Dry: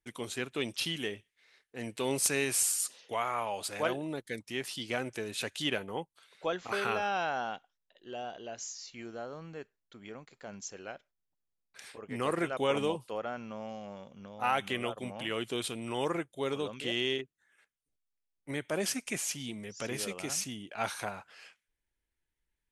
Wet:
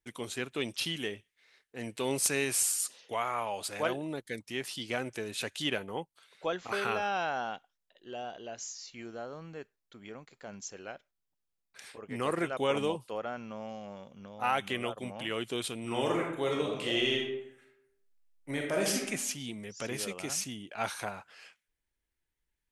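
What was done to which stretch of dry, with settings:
15.8–19.03 reverb throw, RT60 0.8 s, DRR -0.5 dB

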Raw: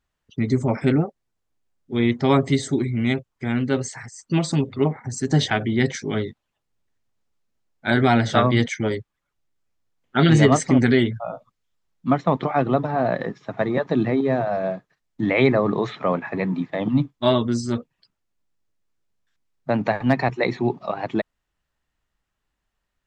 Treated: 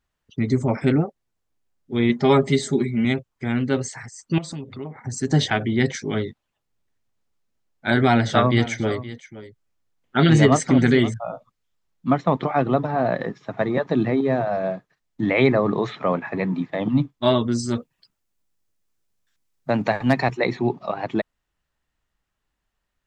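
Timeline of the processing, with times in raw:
2.09–3.05 comb 4.9 ms
4.38–5.07 compressor 3:1, threshold -33 dBFS
8.05–11.14 echo 0.52 s -16 dB
17.58–20.36 high shelf 7200 Hz -> 4500 Hz +9.5 dB

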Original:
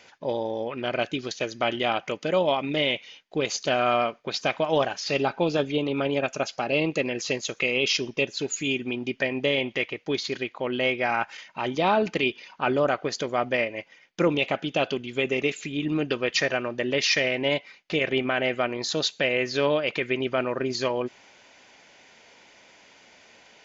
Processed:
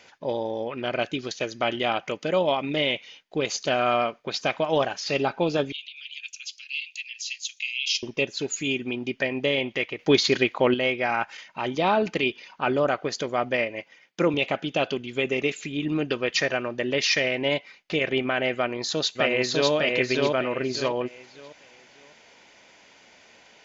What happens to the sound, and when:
5.72–8.03 steep high-pass 2600 Hz
9.99–10.74 gain +8.5 dB
13.79–14.34 HPF 120 Hz
18.55–19.72 echo throw 0.6 s, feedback 30%, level -1.5 dB

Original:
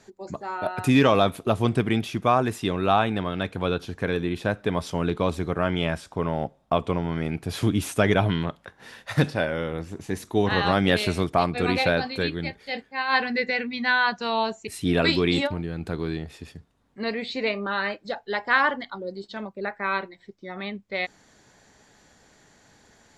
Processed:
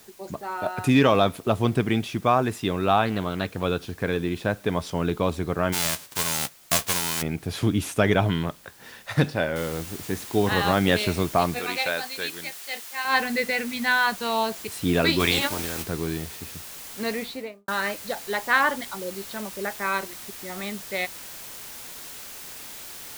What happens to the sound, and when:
3.05–3.63 Doppler distortion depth 0.24 ms
5.72–7.21 spectral whitening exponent 0.1
9.56 noise floor step -53 dB -40 dB
11.59–13.05 HPF 1100 Hz 6 dB/oct
15.19–15.82 spectral limiter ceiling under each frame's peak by 17 dB
17.15–17.68 studio fade out

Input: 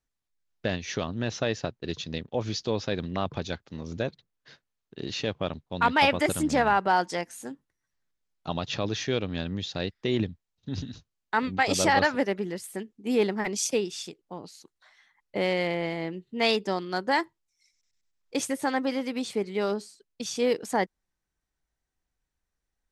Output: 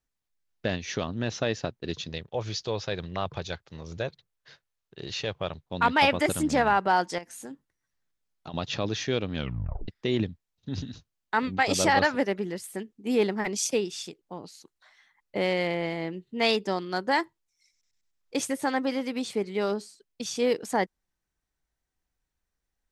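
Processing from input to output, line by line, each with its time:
2.09–5.66 bell 250 Hz -11 dB
7.18–8.54 compressor 10:1, threshold -35 dBFS
9.35 tape stop 0.53 s

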